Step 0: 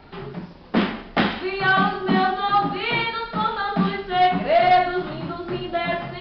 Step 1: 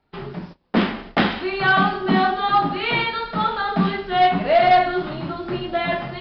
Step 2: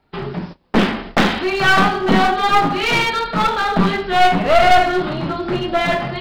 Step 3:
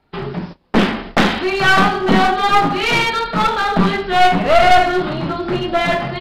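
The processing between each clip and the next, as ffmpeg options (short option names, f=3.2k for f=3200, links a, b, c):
-af "agate=range=-24dB:threshold=-39dB:ratio=16:detection=peak,volume=1.5dB"
-af "aeval=exprs='clip(val(0),-1,0.0631)':c=same,volume=6.5dB"
-af "aresample=32000,aresample=44100,volume=1dB"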